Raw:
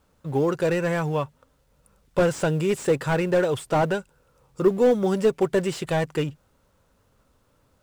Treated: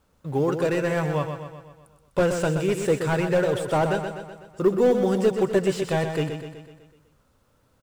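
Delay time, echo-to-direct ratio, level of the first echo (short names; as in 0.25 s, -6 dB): 0.125 s, -6.0 dB, -7.5 dB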